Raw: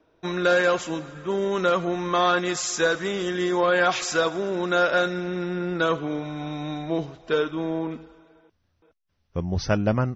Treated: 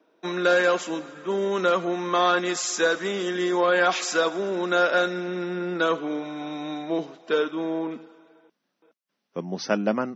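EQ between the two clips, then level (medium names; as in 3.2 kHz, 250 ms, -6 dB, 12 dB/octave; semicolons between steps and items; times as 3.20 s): steep high-pass 190 Hz 36 dB/octave; 0.0 dB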